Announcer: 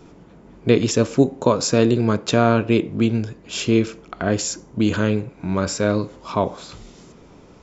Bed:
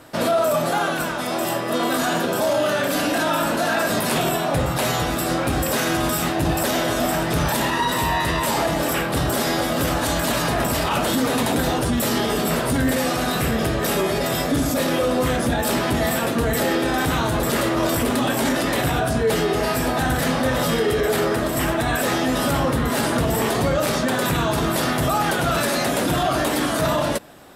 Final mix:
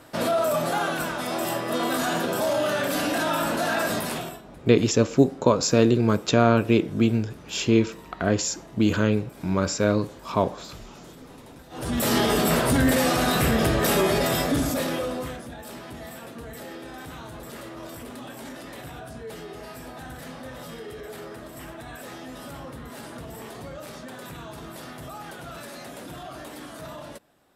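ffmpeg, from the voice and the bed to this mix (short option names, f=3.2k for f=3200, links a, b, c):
-filter_complex "[0:a]adelay=4000,volume=-2dB[a];[1:a]volume=24dB,afade=t=out:st=3.87:d=0.55:silence=0.0630957,afade=t=in:st=11.7:d=0.45:silence=0.0398107,afade=t=out:st=14.13:d=1.31:silence=0.11885[b];[a][b]amix=inputs=2:normalize=0"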